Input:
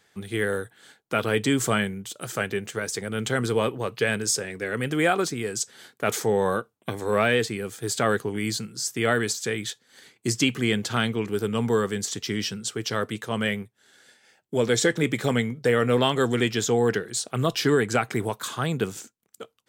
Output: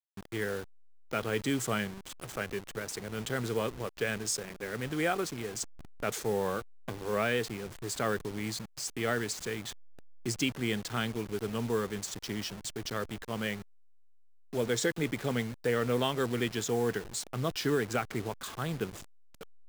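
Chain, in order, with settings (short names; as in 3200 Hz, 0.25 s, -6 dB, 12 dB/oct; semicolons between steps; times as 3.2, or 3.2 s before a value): level-crossing sampler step -31 dBFS; gain -8 dB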